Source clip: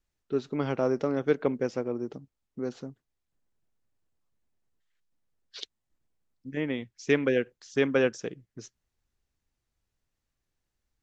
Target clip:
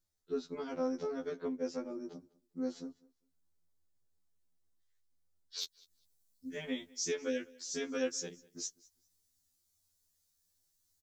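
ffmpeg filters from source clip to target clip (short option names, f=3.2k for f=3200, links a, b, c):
-af "asetnsamples=n=441:p=0,asendcmd='5.59 highshelf g 4.5',highshelf=f=3.7k:g=-9.5,alimiter=limit=-19.5dB:level=0:latency=1:release=491,aexciter=amount=3.7:drive=7:freq=3.8k,asoftclip=type=hard:threshold=-18.5dB,aecho=1:1:200|400:0.0631|0.012,afftfilt=real='re*2*eq(mod(b,4),0)':imag='im*2*eq(mod(b,4),0)':win_size=2048:overlap=0.75,volume=-3.5dB"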